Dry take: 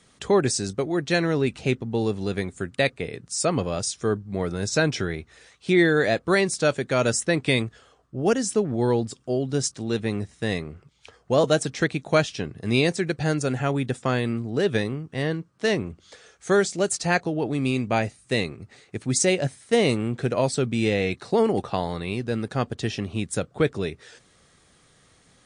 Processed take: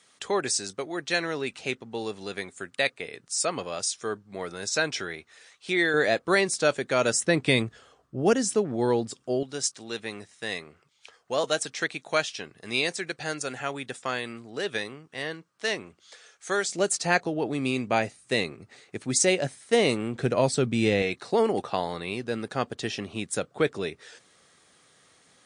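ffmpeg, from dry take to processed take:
ffmpeg -i in.wav -af "asetnsamples=nb_out_samples=441:pad=0,asendcmd='5.94 highpass f 360;7.21 highpass f 110;8.55 highpass f 270;9.43 highpass f 1100;16.69 highpass f 290;20.15 highpass f 93;21.02 highpass f 360',highpass=frequency=890:poles=1" out.wav

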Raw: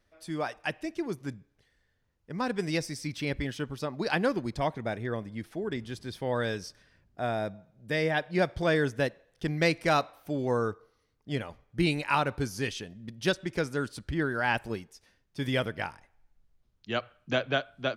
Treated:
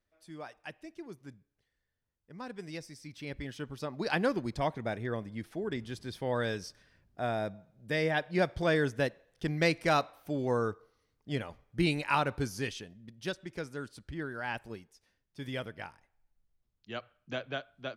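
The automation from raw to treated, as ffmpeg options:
ffmpeg -i in.wav -af "volume=-2dB,afade=type=in:start_time=3.09:duration=1.11:silence=0.316228,afade=type=out:start_time=12.48:duration=0.62:silence=0.446684" out.wav

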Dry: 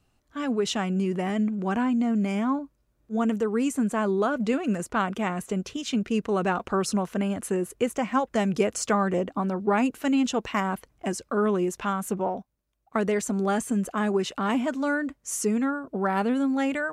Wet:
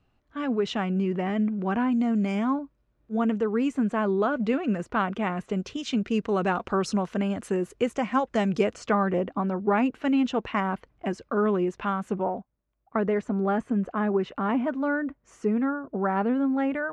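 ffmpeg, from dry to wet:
ffmpeg -i in.wav -af "asetnsamples=nb_out_samples=441:pad=0,asendcmd='1.92 lowpass f 5900;2.54 lowpass f 3400;5.53 lowpass f 5500;8.73 lowpass f 3000;12.23 lowpass f 1800',lowpass=3200" out.wav

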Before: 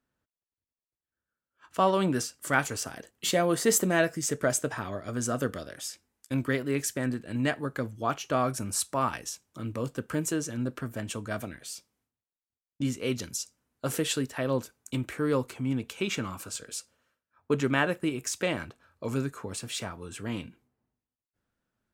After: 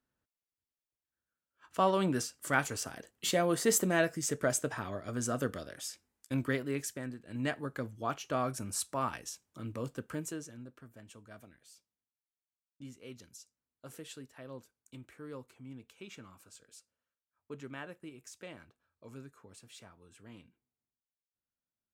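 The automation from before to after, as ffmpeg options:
ffmpeg -i in.wav -af "volume=3.5dB,afade=type=out:start_time=6.49:duration=0.69:silence=0.334965,afade=type=in:start_time=7.18:duration=0.29:silence=0.421697,afade=type=out:start_time=9.92:duration=0.75:silence=0.237137" out.wav

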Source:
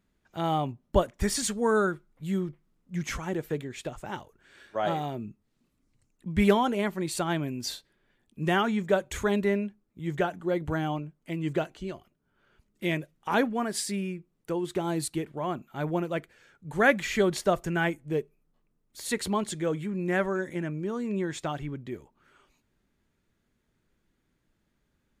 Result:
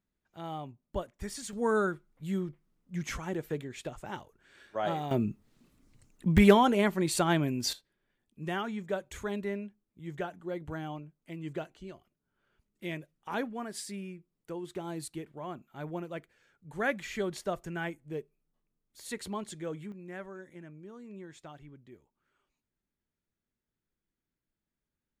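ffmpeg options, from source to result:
ffmpeg -i in.wav -af "asetnsamples=nb_out_samples=441:pad=0,asendcmd='1.53 volume volume -3.5dB;5.11 volume volume 8dB;6.38 volume volume 2dB;7.73 volume volume -9dB;19.92 volume volume -16dB',volume=-12dB" out.wav

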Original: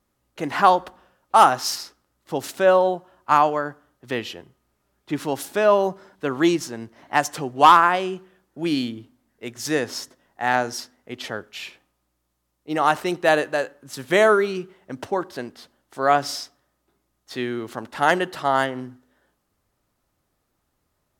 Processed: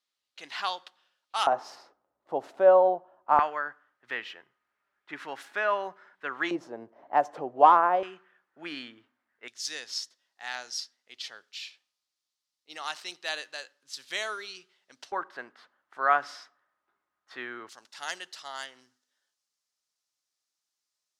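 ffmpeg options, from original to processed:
ffmpeg -i in.wav -af "asetnsamples=nb_out_samples=441:pad=0,asendcmd='1.47 bandpass f 680;3.39 bandpass f 1700;6.51 bandpass f 630;8.03 bandpass f 1600;9.48 bandpass f 4600;15.12 bandpass f 1400;17.69 bandpass f 5500',bandpass=frequency=3900:width_type=q:width=1.8:csg=0" out.wav

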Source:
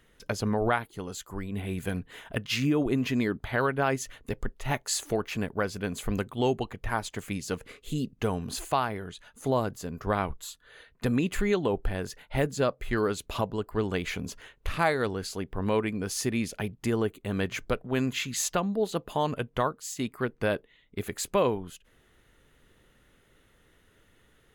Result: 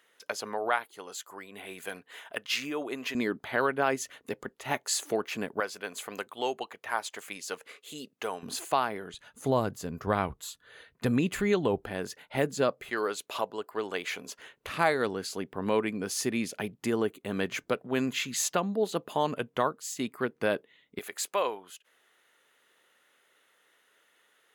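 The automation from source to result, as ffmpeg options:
ffmpeg -i in.wav -af "asetnsamples=nb_out_samples=441:pad=0,asendcmd='3.15 highpass f 250;5.6 highpass f 560;8.43 highpass f 240;9.14 highpass f 85;11.84 highpass f 180;12.9 highpass f 450;14.39 highpass f 190;20.99 highpass f 640',highpass=560" out.wav

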